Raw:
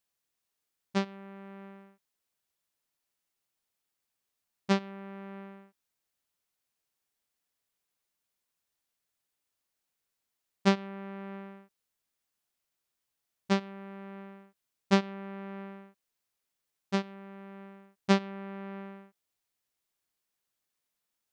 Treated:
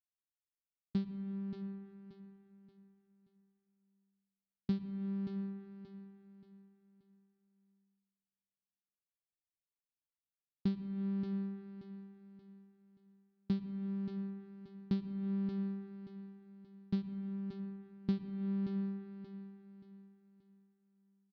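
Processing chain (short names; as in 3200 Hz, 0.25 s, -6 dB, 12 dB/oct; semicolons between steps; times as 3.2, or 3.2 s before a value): Wiener smoothing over 9 samples; gate with hold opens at -46 dBFS; EQ curve 140 Hz 0 dB, 330 Hz -5 dB, 560 Hz -25 dB, 2500 Hz -17 dB, 4400 Hz +1 dB, 6300 Hz -4 dB; compressor 8:1, threshold -41 dBFS, peak gain reduction 18 dB; air absorption 380 m; feedback echo 0.579 s, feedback 35%, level -9.5 dB; reverb RT60 1.9 s, pre-delay 83 ms, DRR 12.5 dB; gain +10 dB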